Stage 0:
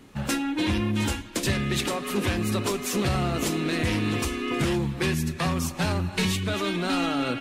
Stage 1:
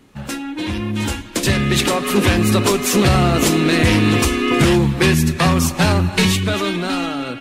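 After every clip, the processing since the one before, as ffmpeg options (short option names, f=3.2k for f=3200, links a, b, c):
-af "dynaudnorm=f=380:g=7:m=12dB"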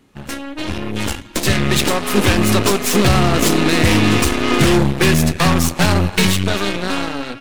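-af "aeval=exprs='0.631*(cos(1*acos(clip(val(0)/0.631,-1,1)))-cos(1*PI/2))+0.0316*(cos(7*acos(clip(val(0)/0.631,-1,1)))-cos(7*PI/2))+0.0891*(cos(8*acos(clip(val(0)/0.631,-1,1)))-cos(8*PI/2))':c=same"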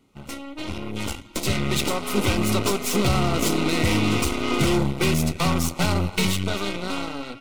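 -af "asuperstop=centerf=1700:order=8:qfactor=5.6,volume=-7.5dB"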